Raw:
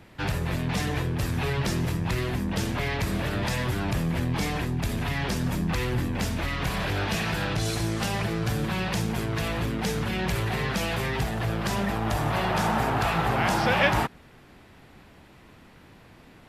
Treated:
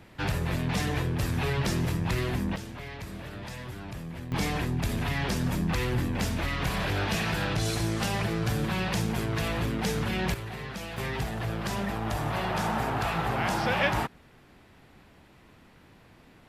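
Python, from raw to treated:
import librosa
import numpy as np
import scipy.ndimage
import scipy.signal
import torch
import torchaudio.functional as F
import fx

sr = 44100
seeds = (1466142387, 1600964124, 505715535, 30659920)

y = fx.gain(x, sr, db=fx.steps((0.0, -1.0), (2.56, -12.0), (4.32, -1.0), (10.34, -10.0), (10.98, -4.0)))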